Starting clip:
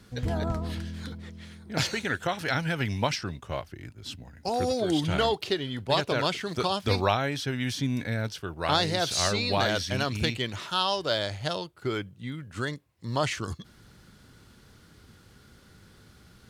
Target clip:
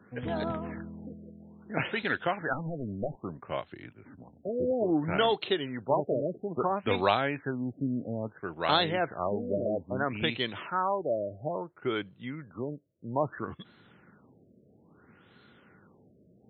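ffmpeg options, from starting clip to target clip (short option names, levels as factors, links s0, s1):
-filter_complex "[0:a]highpass=180,asettb=1/sr,asplit=3[s0][s1][s2];[s0]atrim=end=2.534[s3];[s1]atrim=start=2.53:end=3.17,asetpts=PTS-STARTPTS,afade=t=in:d=0.004:c=qsin,afade=t=out:st=0.636:d=0.004:c=qsin,aeval=exprs='clip(val(0),-1,0.0335)':c=same[s4];[s2]atrim=start=3.166[s5];[s3][s4]acrossfade=d=0.004:c1=hsin:c2=qsin[s6];[s6][s5]acrossfade=d=0.004:c1=qsin:c2=hsin,afftfilt=real='re*lt(b*sr/1024,660*pow(4300/660,0.5+0.5*sin(2*PI*0.6*pts/sr)))':imag='im*lt(b*sr/1024,660*pow(4300/660,0.5+0.5*sin(2*PI*0.6*pts/sr)))':win_size=1024:overlap=0.75"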